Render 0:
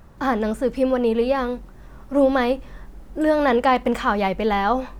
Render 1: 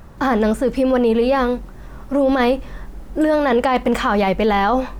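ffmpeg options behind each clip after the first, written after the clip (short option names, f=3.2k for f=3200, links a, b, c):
-af "alimiter=limit=-15.5dB:level=0:latency=1:release=13,volume=6.5dB"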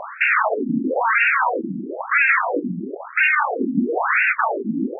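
-af "aeval=exprs='0.376*sin(PI/2*7.94*val(0)/0.376)':c=same,afftfilt=real='re*between(b*sr/1024,230*pow(2000/230,0.5+0.5*sin(2*PI*1*pts/sr))/1.41,230*pow(2000/230,0.5+0.5*sin(2*PI*1*pts/sr))*1.41)':imag='im*between(b*sr/1024,230*pow(2000/230,0.5+0.5*sin(2*PI*1*pts/sr))/1.41,230*pow(2000/230,0.5+0.5*sin(2*PI*1*pts/sr))*1.41)':win_size=1024:overlap=0.75"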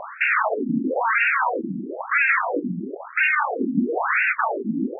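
-af "bass=f=250:g=2,treble=f=4k:g=-4,volume=-2.5dB"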